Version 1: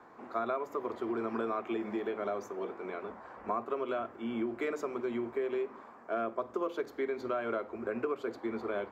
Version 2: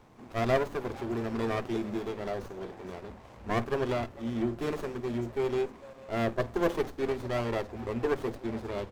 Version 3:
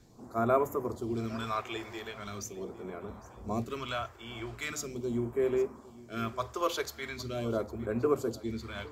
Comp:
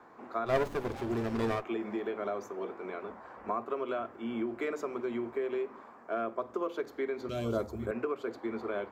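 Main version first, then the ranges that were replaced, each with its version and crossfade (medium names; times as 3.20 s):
1
0.52–1.58 s: from 2, crossfade 0.16 s
7.29–7.91 s: from 3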